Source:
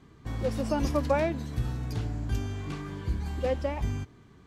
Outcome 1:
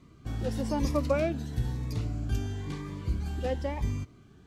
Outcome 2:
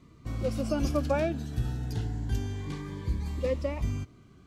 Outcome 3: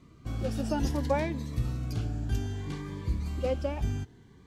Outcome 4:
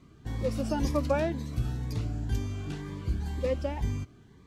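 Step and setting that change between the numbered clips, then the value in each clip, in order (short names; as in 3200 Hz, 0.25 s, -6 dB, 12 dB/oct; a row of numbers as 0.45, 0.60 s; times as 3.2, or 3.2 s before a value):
cascading phaser, rate: 1, 0.27, 0.62, 2 Hz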